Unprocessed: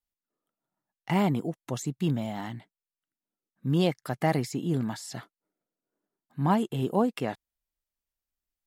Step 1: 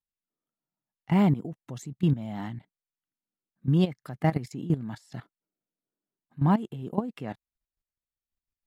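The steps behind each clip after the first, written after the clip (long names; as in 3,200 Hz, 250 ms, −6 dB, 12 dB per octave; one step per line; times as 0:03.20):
bass and treble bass +15 dB, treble −6 dB
output level in coarse steps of 15 dB
low-shelf EQ 170 Hz −11 dB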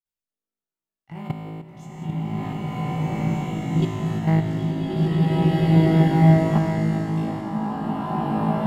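flutter between parallel walls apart 3.2 metres, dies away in 1.2 s
output level in coarse steps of 15 dB
slow-attack reverb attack 2,030 ms, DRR −11 dB
level −4 dB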